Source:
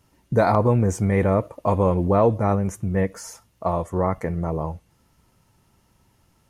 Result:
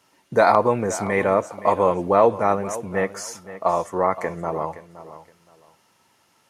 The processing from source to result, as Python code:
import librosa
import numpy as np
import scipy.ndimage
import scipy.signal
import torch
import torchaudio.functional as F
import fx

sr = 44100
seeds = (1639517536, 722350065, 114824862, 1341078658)

p1 = fx.weighting(x, sr, curve='A')
p2 = p1 + fx.echo_feedback(p1, sr, ms=519, feedback_pct=22, wet_db=-15.0, dry=0)
y = p2 * librosa.db_to_amplitude(5.0)